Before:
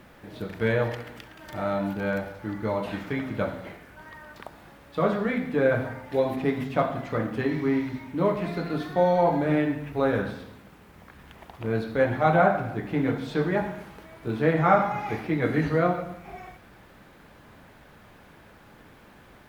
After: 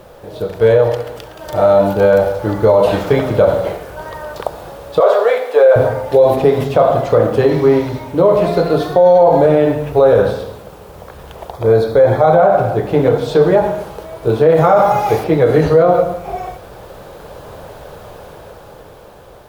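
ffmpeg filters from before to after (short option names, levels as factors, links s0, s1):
-filter_complex "[0:a]asettb=1/sr,asplit=3[s0][s1][s2];[s0]atrim=end=5.004[s3];[s1]atrim=start=5:end=5.76,asetpts=PTS-STARTPTS,afade=t=in:d=0.004:c=qsin,afade=t=out:st=0.756:d=0.004:c=qsin,highpass=f=500:w=0.5412,highpass=f=500:w=1.3066[s4];[s2]atrim=start=5.756[s5];[s3][s4]acrossfade=d=0.004:c1=hsin:c2=qsin[s6];[s6][s5]acrossfade=d=0.004:c1=qsin:c2=hsin,asettb=1/sr,asplit=3[s7][s8][s9];[s7]atrim=end=11.524[s10];[s8]atrim=start=11.52:end=12.39,asetpts=PTS-STARTPTS,afade=t=in:d=0.004:c=qsin,afade=t=out:st=0.866:d=0.004:c=qsin,asuperstop=centerf=2800:order=4:qfactor=5[s11];[s9]atrim=start=12.386[s12];[s10][s11]acrossfade=d=0.004:c1=hsin:c2=qsin[s13];[s13][s12]acrossfade=d=0.004:c1=qsin:c2=hsin,asettb=1/sr,asplit=3[s14][s15][s16];[s14]atrim=end=14.544[s17];[s15]atrim=start=14.54:end=15.24,asetpts=PTS-STARTPTS,afade=t=in:d=0.004:c=qsin,afade=t=out:st=0.696:d=0.004:c=qsin,highshelf=f=5400:g=9.5[s18];[s16]atrim=start=15.236[s19];[s17][s18]acrossfade=d=0.004:c1=hsin:c2=qsin[s20];[s20][s19]acrossfade=d=0.004:c1=qsin:c2=hsin,equalizer=f=250:t=o:w=1:g=-12,equalizer=f=500:t=o:w=1:g=10,equalizer=f=2000:t=o:w=1:g=-11,dynaudnorm=f=290:g=11:m=2.51,alimiter=level_in=4.22:limit=0.891:release=50:level=0:latency=1,volume=0.891"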